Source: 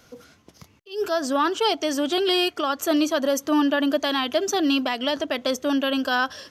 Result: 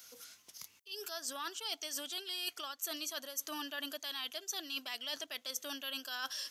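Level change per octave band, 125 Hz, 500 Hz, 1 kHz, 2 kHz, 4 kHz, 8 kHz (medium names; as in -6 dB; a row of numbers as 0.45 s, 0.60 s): no reading, -25.5 dB, -21.0 dB, -16.0 dB, -11.5 dB, -6.5 dB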